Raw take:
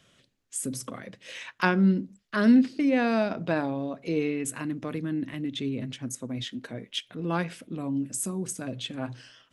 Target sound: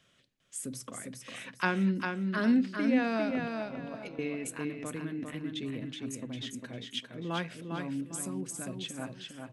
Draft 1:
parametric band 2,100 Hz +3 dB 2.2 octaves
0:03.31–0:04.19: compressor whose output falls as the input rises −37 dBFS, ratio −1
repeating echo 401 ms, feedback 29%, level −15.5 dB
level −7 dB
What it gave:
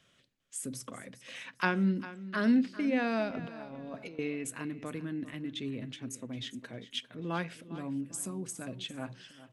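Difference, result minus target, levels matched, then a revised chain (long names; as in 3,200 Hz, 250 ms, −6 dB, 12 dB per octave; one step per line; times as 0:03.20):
echo-to-direct −10.5 dB
parametric band 2,100 Hz +3 dB 2.2 octaves
0:03.31–0:04.19: compressor whose output falls as the input rises −37 dBFS, ratio −1
repeating echo 401 ms, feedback 29%, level −5 dB
level −7 dB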